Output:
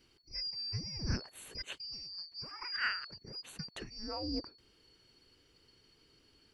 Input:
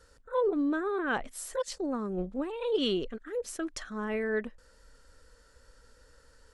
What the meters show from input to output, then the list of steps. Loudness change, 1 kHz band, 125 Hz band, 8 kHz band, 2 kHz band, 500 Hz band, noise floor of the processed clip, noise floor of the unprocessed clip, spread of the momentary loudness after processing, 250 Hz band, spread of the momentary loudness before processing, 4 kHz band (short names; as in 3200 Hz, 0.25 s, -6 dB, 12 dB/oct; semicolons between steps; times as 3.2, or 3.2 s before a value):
-7.0 dB, -10.5 dB, +3.0 dB, -9.5 dB, -3.5 dB, -20.0 dB, -68 dBFS, -61 dBFS, 10 LU, -13.0 dB, 8 LU, +2.0 dB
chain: four-band scrambler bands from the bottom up 2341; band shelf 6400 Hz -14 dB; Doppler distortion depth 0.11 ms; gain +1 dB